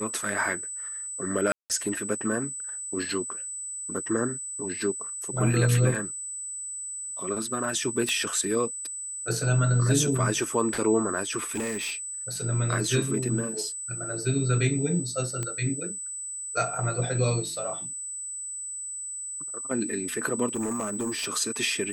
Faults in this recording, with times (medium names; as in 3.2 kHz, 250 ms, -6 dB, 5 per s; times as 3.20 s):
whine 8 kHz -33 dBFS
1.52–1.70 s: dropout 178 ms
8.09 s: pop -14 dBFS
11.52–11.95 s: clipped -26.5 dBFS
15.43 s: pop -17 dBFS
20.55–21.28 s: clipped -25.5 dBFS